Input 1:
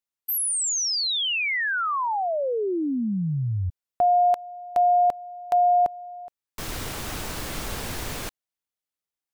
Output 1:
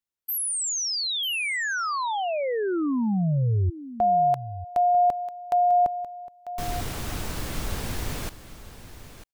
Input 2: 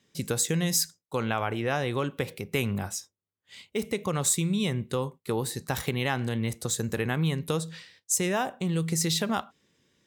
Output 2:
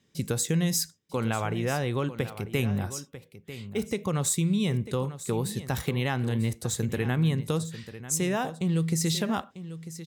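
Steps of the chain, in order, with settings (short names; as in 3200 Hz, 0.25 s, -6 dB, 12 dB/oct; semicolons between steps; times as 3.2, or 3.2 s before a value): low shelf 250 Hz +7 dB; echo 0.945 s -13.5 dB; gain -2.5 dB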